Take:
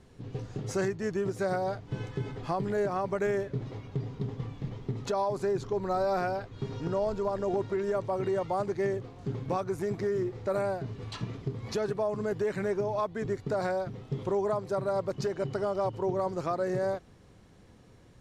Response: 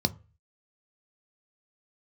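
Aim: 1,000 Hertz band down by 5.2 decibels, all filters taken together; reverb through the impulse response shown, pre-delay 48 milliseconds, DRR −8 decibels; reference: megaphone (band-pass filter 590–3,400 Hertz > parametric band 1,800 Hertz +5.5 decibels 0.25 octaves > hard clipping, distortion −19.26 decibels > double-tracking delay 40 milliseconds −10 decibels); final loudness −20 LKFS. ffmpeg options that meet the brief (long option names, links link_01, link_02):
-filter_complex "[0:a]equalizer=frequency=1000:width_type=o:gain=-6,asplit=2[link_01][link_02];[1:a]atrim=start_sample=2205,adelay=48[link_03];[link_02][link_03]afir=irnorm=-1:irlink=0,volume=0dB[link_04];[link_01][link_04]amix=inputs=2:normalize=0,highpass=590,lowpass=3400,equalizer=frequency=1800:width_type=o:width=0.25:gain=5.5,asoftclip=type=hard:threshold=-18.5dB,asplit=2[link_05][link_06];[link_06]adelay=40,volume=-10dB[link_07];[link_05][link_07]amix=inputs=2:normalize=0,volume=6dB"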